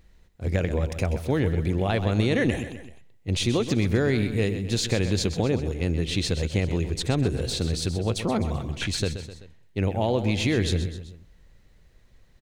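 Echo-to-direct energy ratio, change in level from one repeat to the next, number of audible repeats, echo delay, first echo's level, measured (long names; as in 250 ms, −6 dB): −9.5 dB, −5.5 dB, 3, 128 ms, −11.0 dB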